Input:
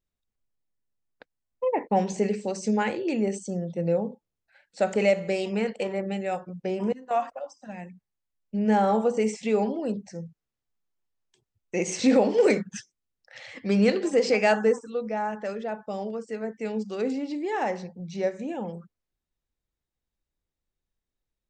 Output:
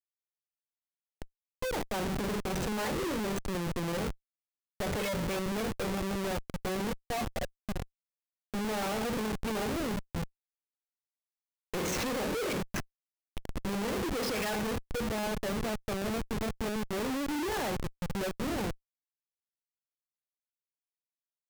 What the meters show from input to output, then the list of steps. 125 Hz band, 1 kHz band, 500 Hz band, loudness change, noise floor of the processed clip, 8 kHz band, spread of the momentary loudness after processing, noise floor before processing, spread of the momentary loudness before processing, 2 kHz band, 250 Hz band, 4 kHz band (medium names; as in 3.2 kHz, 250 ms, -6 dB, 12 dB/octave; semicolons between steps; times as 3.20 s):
-2.0 dB, -7.0 dB, -10.0 dB, -7.5 dB, under -85 dBFS, -0.5 dB, 7 LU, under -85 dBFS, 15 LU, -4.0 dB, -7.0 dB, +1.0 dB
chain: coarse spectral quantiser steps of 30 dB; Schmitt trigger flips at -34 dBFS; trim -3.5 dB